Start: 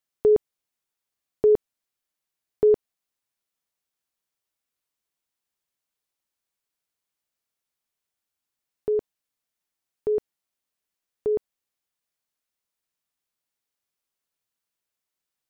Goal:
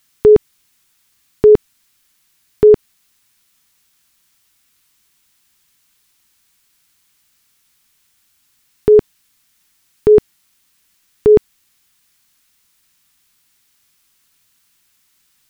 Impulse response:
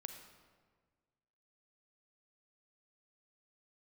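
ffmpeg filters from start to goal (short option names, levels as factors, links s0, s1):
-af "equalizer=f=570:t=o:w=1.3:g=-14,alimiter=level_in=21.1:limit=0.891:release=50:level=0:latency=1,volume=0.891"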